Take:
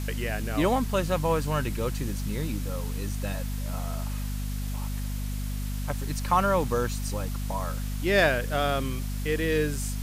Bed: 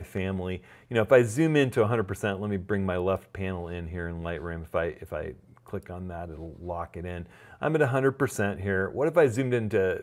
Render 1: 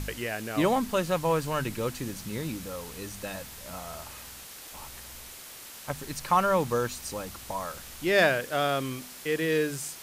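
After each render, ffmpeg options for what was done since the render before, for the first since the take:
ffmpeg -i in.wav -af "bandreject=frequency=50:width_type=h:width=4,bandreject=frequency=100:width_type=h:width=4,bandreject=frequency=150:width_type=h:width=4,bandreject=frequency=200:width_type=h:width=4,bandreject=frequency=250:width_type=h:width=4" out.wav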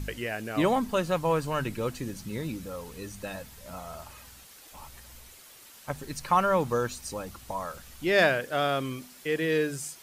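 ffmpeg -i in.wav -af "afftdn=noise_reduction=8:noise_floor=-45" out.wav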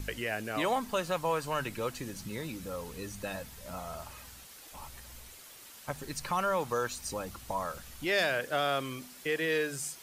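ffmpeg -i in.wav -filter_complex "[0:a]acrossover=split=500|3100[link_01][link_02][link_03];[link_01]acompressor=threshold=-38dB:ratio=6[link_04];[link_02]alimiter=limit=-22.5dB:level=0:latency=1[link_05];[link_04][link_05][link_03]amix=inputs=3:normalize=0" out.wav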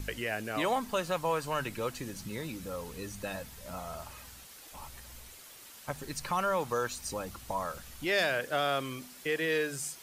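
ffmpeg -i in.wav -af anull out.wav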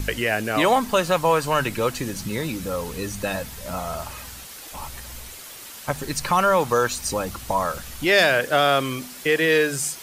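ffmpeg -i in.wav -af "volume=11.5dB" out.wav

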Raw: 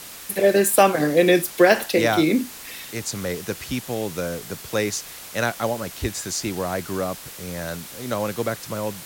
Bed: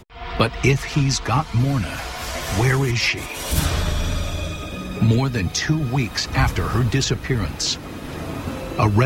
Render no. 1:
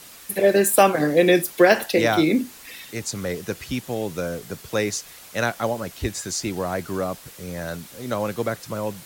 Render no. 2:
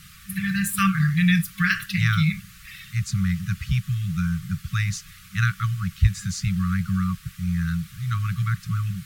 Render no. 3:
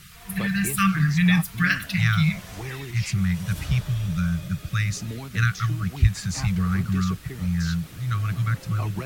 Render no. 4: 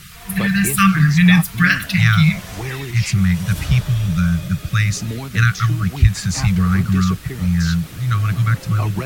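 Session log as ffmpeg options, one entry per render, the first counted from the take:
ffmpeg -i in.wav -af "afftdn=noise_reduction=6:noise_floor=-39" out.wav
ffmpeg -i in.wav -af "afftfilt=real='re*(1-between(b*sr/4096,200,1100))':imag='im*(1-between(b*sr/4096,200,1100))':win_size=4096:overlap=0.75,bass=frequency=250:gain=13,treble=frequency=4000:gain=-7" out.wav
ffmpeg -i in.wav -i bed.wav -filter_complex "[1:a]volume=-16.5dB[link_01];[0:a][link_01]amix=inputs=2:normalize=0" out.wav
ffmpeg -i in.wav -af "volume=7.5dB,alimiter=limit=-1dB:level=0:latency=1" out.wav

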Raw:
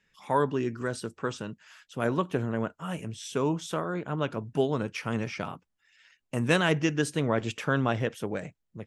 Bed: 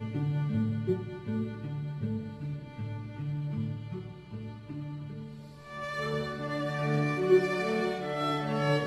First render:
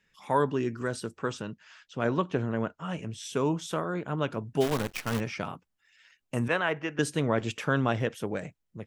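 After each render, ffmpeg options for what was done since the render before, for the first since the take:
ffmpeg -i in.wav -filter_complex "[0:a]asettb=1/sr,asplit=3[link_01][link_02][link_03];[link_01]atrim=end=1.414[link_04];[link_02]atrim=start=1.41:end=3.12,asetpts=PTS-STARTPTS,afade=type=in:duration=0.004:curve=qsin,afade=type=out:start_time=1.706:duration=0.004:curve=qsin,lowpass=frequency=6600:width=0.5412,lowpass=frequency=6600:width=1.3066[link_05];[link_03]atrim=start=3.116[link_06];[link_04][link_05]acrossfade=duration=0.004:curve1=hsin:curve2=qsin[link_07];[link_07][link_06]acrossfade=duration=0.004:curve1=qsin:curve2=hsin,asplit=3[link_08][link_09][link_10];[link_08]afade=type=out:start_time=4.6:duration=0.02[link_11];[link_09]acrusher=bits=6:dc=4:mix=0:aa=0.000001,afade=type=in:start_time=4.6:duration=0.02,afade=type=out:start_time=5.19:duration=0.02[link_12];[link_10]afade=type=in:start_time=5.19:duration=0.02[link_13];[link_11][link_12][link_13]amix=inputs=3:normalize=0,asettb=1/sr,asplit=3[link_14][link_15][link_16];[link_14]atrim=end=6.484[link_17];[link_15]atrim=start=6.48:end=6.99,asetpts=PTS-STARTPTS,afade=type=in:duration=0.004:curve=qsin,afade=type=out:start_time=0.506:duration=0.004:curve=qsin,acrossover=split=460 2700:gain=0.224 1 0.112[link_18][link_19][link_20];[link_18][link_19][link_20]amix=inputs=3:normalize=0[link_21];[link_16]atrim=start=6.986[link_22];[link_17][link_21]acrossfade=duration=0.004:curve1=hsin:curve2=qsin[link_23];[link_23][link_22]acrossfade=duration=0.004:curve1=qsin:curve2=hsin" out.wav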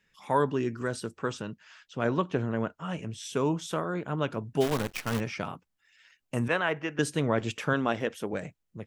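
ffmpeg -i in.wav -filter_complex "[0:a]asettb=1/sr,asplit=3[link_01][link_02][link_03];[link_01]atrim=end=7.734[link_04];[link_02]atrim=start=7.73:end=8.33,asetpts=PTS-STARTPTS,afade=type=in:duration=0.004:curve=qsin,afade=type=out:start_time=0.596:duration=0.004:curve=qsin,equalizer=frequency=120:width_type=o:width=0.52:gain=-12[link_05];[link_03]atrim=start=8.326[link_06];[link_04][link_05]acrossfade=duration=0.004:curve1=hsin:curve2=qsin[link_07];[link_07][link_06]acrossfade=duration=0.004:curve1=qsin:curve2=hsin" out.wav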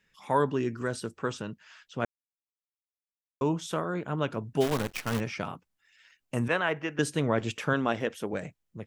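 ffmpeg -i in.wav -filter_complex "[0:a]asplit=3[link_01][link_02][link_03];[link_01]atrim=end=2.05,asetpts=PTS-STARTPTS,afade=type=out:start_time=2.046:duration=0.004:curve=hsin[link_04];[link_02]atrim=start=2.05:end=3.41,asetpts=PTS-STARTPTS,volume=0[link_05];[link_03]atrim=start=3.41,asetpts=PTS-STARTPTS,afade=type=in:duration=0.004:curve=hsin[link_06];[link_04][link_05][link_06]concat=n=3:v=0:a=1" out.wav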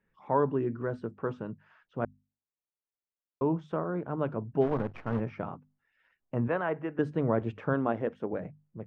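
ffmpeg -i in.wav -af "lowpass=1100,bandreject=frequency=50:width_type=h:width=6,bandreject=frequency=100:width_type=h:width=6,bandreject=frequency=150:width_type=h:width=6,bandreject=frequency=200:width_type=h:width=6,bandreject=frequency=250:width_type=h:width=6" out.wav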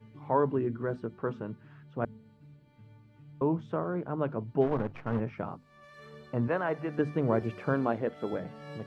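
ffmpeg -i in.wav -i bed.wav -filter_complex "[1:a]volume=-17.5dB[link_01];[0:a][link_01]amix=inputs=2:normalize=0" out.wav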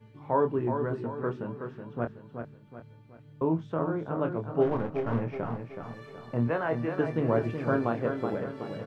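ffmpeg -i in.wav -filter_complex "[0:a]asplit=2[link_01][link_02];[link_02]adelay=25,volume=-7dB[link_03];[link_01][link_03]amix=inputs=2:normalize=0,asplit=2[link_04][link_05];[link_05]aecho=0:1:374|748|1122|1496|1870:0.447|0.188|0.0788|0.0331|0.0139[link_06];[link_04][link_06]amix=inputs=2:normalize=0" out.wav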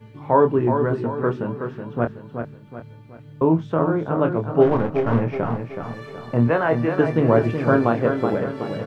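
ffmpeg -i in.wav -af "volume=9.5dB" out.wav

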